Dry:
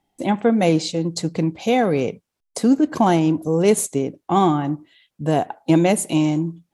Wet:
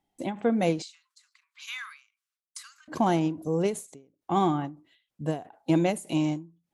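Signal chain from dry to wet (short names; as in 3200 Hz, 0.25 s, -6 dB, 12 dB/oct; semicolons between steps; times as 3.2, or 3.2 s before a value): 0.82–2.88 steep high-pass 1100 Hz 72 dB/oct; ending taper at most 160 dB/s; gain -7.5 dB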